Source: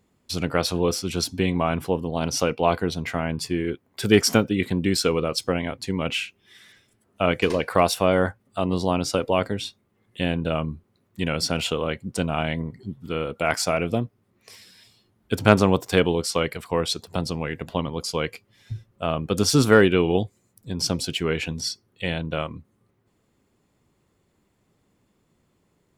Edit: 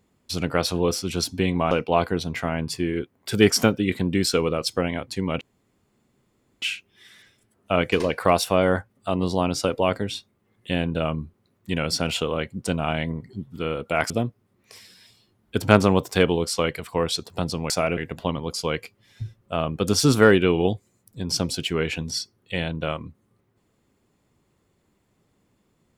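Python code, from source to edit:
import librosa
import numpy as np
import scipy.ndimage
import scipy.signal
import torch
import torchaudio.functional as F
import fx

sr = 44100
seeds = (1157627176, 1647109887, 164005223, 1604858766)

y = fx.edit(x, sr, fx.cut(start_s=1.71, length_s=0.71),
    fx.insert_room_tone(at_s=6.12, length_s=1.21),
    fx.move(start_s=13.6, length_s=0.27, to_s=17.47), tone=tone)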